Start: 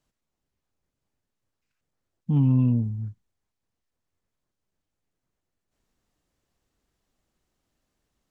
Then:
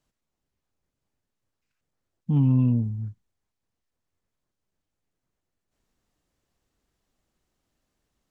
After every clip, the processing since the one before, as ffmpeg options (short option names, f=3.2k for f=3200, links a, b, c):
-af anull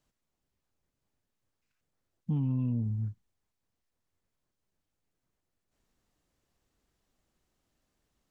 -af "alimiter=limit=-22.5dB:level=0:latency=1:release=118,volume=-1dB"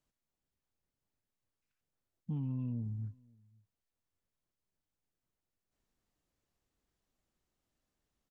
-filter_complex "[0:a]asplit=2[a][b];[b]adelay=530.6,volume=-27dB,highshelf=f=4k:g=-11.9[c];[a][c]amix=inputs=2:normalize=0,volume=-7dB"